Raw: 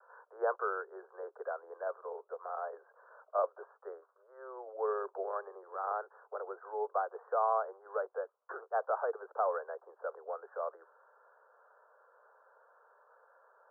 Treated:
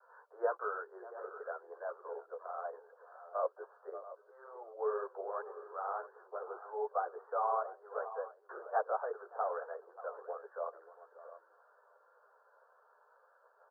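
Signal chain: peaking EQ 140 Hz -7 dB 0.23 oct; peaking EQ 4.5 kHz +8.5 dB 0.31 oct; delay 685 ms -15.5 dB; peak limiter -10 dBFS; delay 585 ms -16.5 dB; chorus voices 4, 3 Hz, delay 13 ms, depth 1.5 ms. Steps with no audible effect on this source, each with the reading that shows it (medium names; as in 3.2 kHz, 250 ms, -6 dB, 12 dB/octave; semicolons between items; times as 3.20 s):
peaking EQ 140 Hz: input has nothing below 320 Hz; peaking EQ 4.5 kHz: input has nothing above 1.7 kHz; peak limiter -10 dBFS: peak at its input -19.5 dBFS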